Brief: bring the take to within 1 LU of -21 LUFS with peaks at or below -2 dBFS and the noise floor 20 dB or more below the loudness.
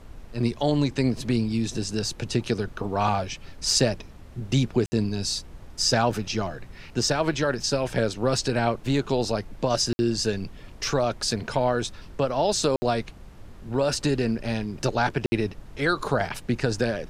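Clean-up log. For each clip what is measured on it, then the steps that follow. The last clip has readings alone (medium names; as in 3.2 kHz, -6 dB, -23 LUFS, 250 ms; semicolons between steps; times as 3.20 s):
dropouts 4; longest dropout 60 ms; noise floor -45 dBFS; noise floor target -46 dBFS; loudness -25.5 LUFS; peak level -8.0 dBFS; loudness target -21.0 LUFS
-> interpolate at 4.86/9.93/12.76/15.26 s, 60 ms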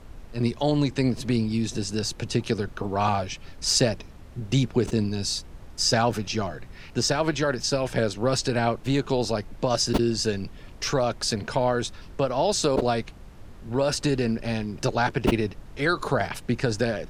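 dropouts 0; noise floor -45 dBFS; noise floor target -46 dBFS
-> noise print and reduce 6 dB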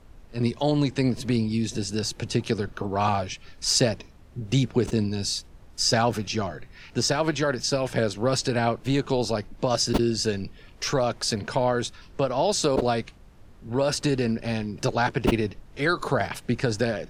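noise floor -49 dBFS; loudness -25.5 LUFS; peak level -7.0 dBFS; loudness target -21.0 LUFS
-> trim +4.5 dB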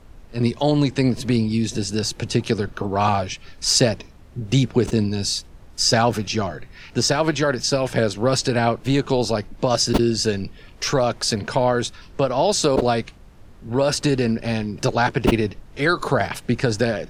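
loudness -21.0 LUFS; peak level -2.5 dBFS; noise floor -45 dBFS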